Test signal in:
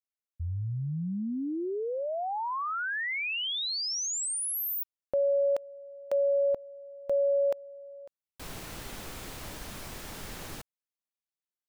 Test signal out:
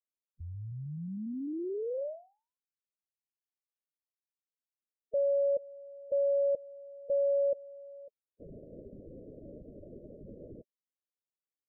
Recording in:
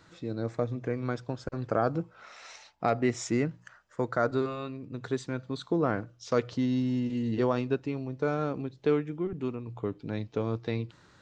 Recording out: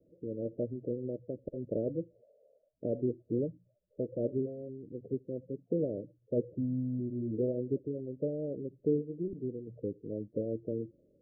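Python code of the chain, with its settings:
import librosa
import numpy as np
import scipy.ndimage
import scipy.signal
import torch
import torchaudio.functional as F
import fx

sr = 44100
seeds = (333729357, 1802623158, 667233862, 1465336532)

y = fx.spec_quant(x, sr, step_db=30)
y = scipy.signal.sosfilt(scipy.signal.butter(16, 600.0, 'lowpass', fs=sr, output='sos'), y)
y = fx.low_shelf(y, sr, hz=210.0, db=-9.5)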